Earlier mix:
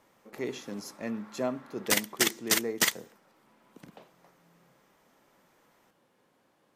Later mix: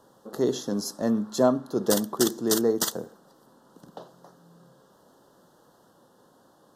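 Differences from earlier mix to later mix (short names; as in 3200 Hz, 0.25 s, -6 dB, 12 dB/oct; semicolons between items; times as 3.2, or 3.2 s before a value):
speech +10.5 dB; master: add Butterworth band-stop 2300 Hz, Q 1.2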